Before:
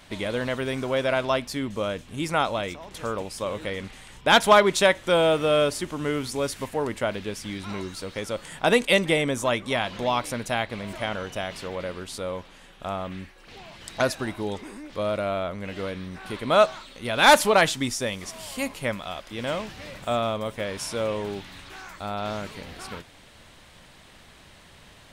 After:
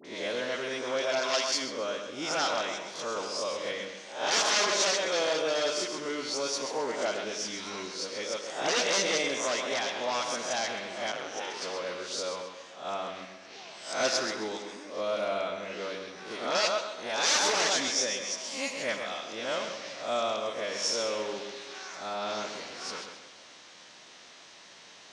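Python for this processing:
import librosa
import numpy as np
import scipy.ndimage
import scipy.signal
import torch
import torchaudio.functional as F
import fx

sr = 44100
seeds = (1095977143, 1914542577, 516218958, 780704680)

p1 = fx.spec_swells(x, sr, rise_s=0.44)
p2 = p1 + fx.echo_feedback(p1, sr, ms=132, feedback_pct=32, wet_db=-8, dry=0)
p3 = 10.0 ** (-16.0 / 20.0) * (np.abs((p2 / 10.0 ** (-16.0 / 20.0) + 3.0) % 4.0 - 2.0) - 1.0)
p4 = fx.tilt_eq(p3, sr, slope=2.0, at=(1.19, 1.61))
p5 = fx.rev_freeverb(p4, sr, rt60_s=1.5, hf_ratio=0.55, predelay_ms=10, drr_db=10.0)
p6 = fx.rider(p5, sr, range_db=4, speed_s=2.0)
p7 = p5 + F.gain(torch.from_numpy(p6), 0.0).numpy()
p8 = fx.ladder_lowpass(p7, sr, hz=6600.0, resonance_pct=60)
p9 = fx.dispersion(p8, sr, late='highs', ms=49.0, hz=1300.0)
p10 = fx.ring_mod(p9, sr, carrier_hz=fx.line((11.11, 46.0), (11.6, 280.0)), at=(11.11, 11.6), fade=0.02)
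p11 = scipy.signal.sosfilt(scipy.signal.butter(2, 320.0, 'highpass', fs=sr, output='sos'), p10)
p12 = fx.band_squash(p11, sr, depth_pct=40, at=(3.16, 3.72))
y = F.gain(torch.from_numpy(p12), -1.5).numpy()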